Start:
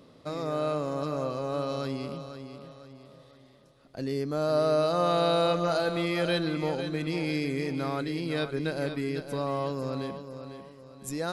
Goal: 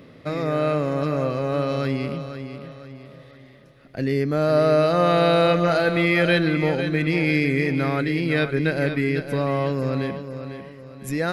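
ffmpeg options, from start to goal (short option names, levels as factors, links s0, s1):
-af "equalizer=f=125:t=o:w=1:g=3,equalizer=f=1000:t=o:w=1:g=-6,equalizer=f=2000:t=o:w=1:g=9,equalizer=f=4000:t=o:w=1:g=-4,equalizer=f=8000:t=o:w=1:g=-9,volume=2.51"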